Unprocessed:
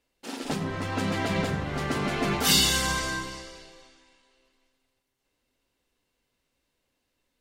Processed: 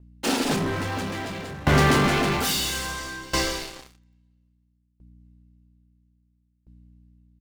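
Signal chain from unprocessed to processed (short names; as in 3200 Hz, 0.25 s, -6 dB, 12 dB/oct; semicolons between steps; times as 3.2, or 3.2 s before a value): in parallel at -3 dB: compressor, threshold -36 dBFS, peak gain reduction 17.5 dB; on the sum: sample leveller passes 5; hum 60 Hz, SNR 29 dB; doubler 28 ms -11 dB; dB-ramp tremolo decaying 0.6 Hz, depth 22 dB; gain -3.5 dB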